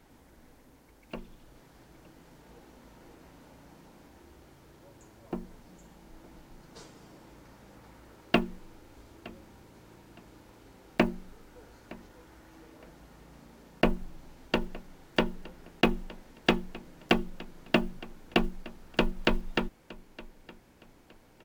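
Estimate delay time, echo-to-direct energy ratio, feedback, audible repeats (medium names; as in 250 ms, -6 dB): 915 ms, -20.5 dB, 29%, 2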